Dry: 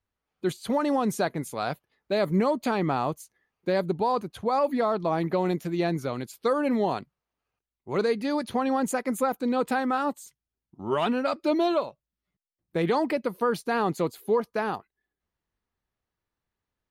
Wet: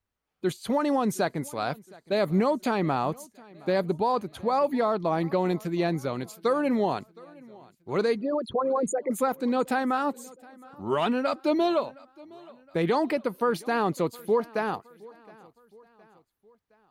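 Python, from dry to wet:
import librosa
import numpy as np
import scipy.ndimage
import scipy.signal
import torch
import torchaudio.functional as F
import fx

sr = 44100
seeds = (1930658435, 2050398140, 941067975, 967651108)

y = fx.envelope_sharpen(x, sr, power=3.0, at=(8.16, 9.11))
y = fx.echo_feedback(y, sr, ms=716, feedback_pct=50, wet_db=-23.5)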